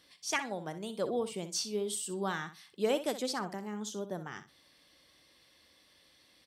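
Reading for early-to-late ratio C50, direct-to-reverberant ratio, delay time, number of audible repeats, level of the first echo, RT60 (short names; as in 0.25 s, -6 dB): none, none, 62 ms, 2, -12.0 dB, none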